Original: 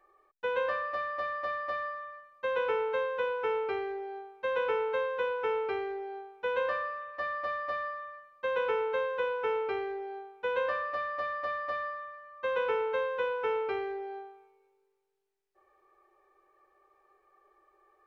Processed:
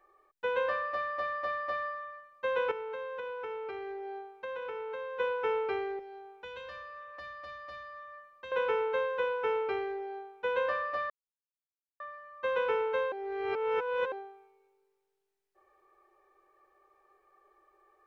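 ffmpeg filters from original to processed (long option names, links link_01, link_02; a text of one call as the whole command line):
ffmpeg -i in.wav -filter_complex "[0:a]asettb=1/sr,asplit=3[link_01][link_02][link_03];[link_01]atrim=end=2.714[link_04];[link_02]atrim=start=2.71:end=5.2,asetpts=PTS-STARTPTS,afade=type=in:duration=0.004:curve=qsin,afade=type=out:start_time=2.486:duration=0.004:curve=qsin,acompressor=threshold=-36dB:ratio=6:attack=3.2:release=140:knee=1:detection=peak[link_05];[link_03]atrim=start=5.196[link_06];[link_04][link_05]acrossfade=duration=0.004:curve1=hsin:curve2=qsin[link_07];[link_07][link_06]acrossfade=duration=0.004:curve1=qsin:curve2=hsin,asettb=1/sr,asplit=3[link_08][link_09][link_10];[link_08]atrim=end=5.994[link_11];[link_09]atrim=start=5.99:end=8.52,asetpts=PTS-STARTPTS,afade=type=in:duration=0.004:curve=qsin,afade=type=out:start_time=2.526:duration=0.004:curve=qsin,acrossover=split=150|3000[link_12][link_13][link_14];[link_13]acompressor=threshold=-44dB:ratio=6:attack=3.2:release=140:knee=2.83:detection=peak[link_15];[link_12][link_15][link_14]amix=inputs=3:normalize=0[link_16];[link_10]atrim=start=8.516[link_17];[link_11][link_16]acrossfade=duration=0.004:curve1=hsin:curve2=qsin[link_18];[link_18][link_17]acrossfade=duration=0.004:curve1=qsin:curve2=hsin,asplit=5[link_19][link_20][link_21][link_22][link_23];[link_19]atrim=end=11.1,asetpts=PTS-STARTPTS,afade=type=out:start_time=11.096:duration=0.004:curve=hsin[link_24];[link_20]atrim=start=11.1:end=12,asetpts=PTS-STARTPTS,volume=0[link_25];[link_21]atrim=start=12:end=13.122,asetpts=PTS-STARTPTS,afade=type=in:duration=0.004:curve=hsin[link_26];[link_22]atrim=start=13.118:end=14.122,asetpts=PTS-STARTPTS,areverse[link_27];[link_23]atrim=start=14.118[link_28];[link_24][link_25][link_26]concat=n=3:v=0:a=1[link_29];[link_29][link_27]acrossfade=duration=0.004:curve1=hsin:curve2=hsin[link_30];[link_30][link_28]acrossfade=duration=0.004:curve1=hsin:curve2=hsin" out.wav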